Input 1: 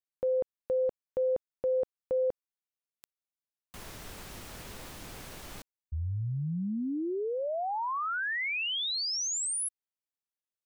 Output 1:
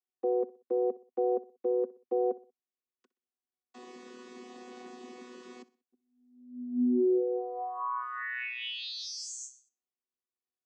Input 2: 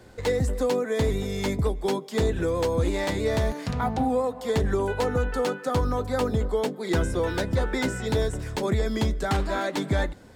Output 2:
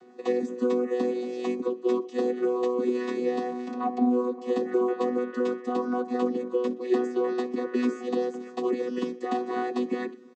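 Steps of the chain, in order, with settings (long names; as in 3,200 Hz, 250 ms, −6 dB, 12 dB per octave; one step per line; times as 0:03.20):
channel vocoder with a chord as carrier bare fifth, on B3
notch filter 1,500 Hz, Q 26
on a send: repeating echo 62 ms, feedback 39%, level −19.5 dB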